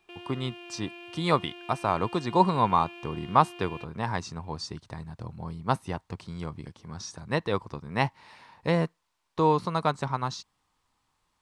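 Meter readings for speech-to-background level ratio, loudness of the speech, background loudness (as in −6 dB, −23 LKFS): 15.5 dB, −29.0 LKFS, −44.5 LKFS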